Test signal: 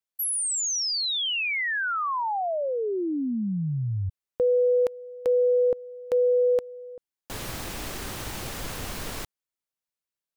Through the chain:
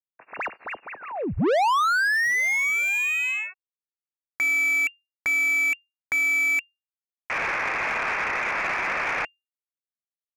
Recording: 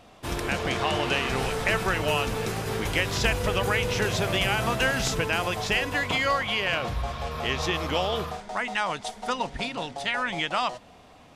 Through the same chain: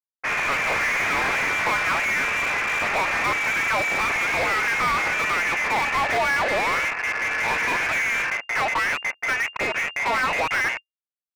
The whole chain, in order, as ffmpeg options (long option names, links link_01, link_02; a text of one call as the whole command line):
ffmpeg -i in.wav -filter_complex "[0:a]highpass=400,aeval=exprs='sgn(val(0))*max(abs(val(0))-0.0126,0)':channel_layout=same,lowpass=frequency=2400:width_type=q:width=0.5098,lowpass=frequency=2400:width_type=q:width=0.6013,lowpass=frequency=2400:width_type=q:width=0.9,lowpass=frequency=2400:width_type=q:width=2.563,afreqshift=-2800,asplit=2[link_01][link_02];[link_02]highpass=frequency=720:poles=1,volume=37dB,asoftclip=type=tanh:threshold=-13.5dB[link_03];[link_01][link_03]amix=inputs=2:normalize=0,lowpass=frequency=1800:poles=1,volume=-6dB" out.wav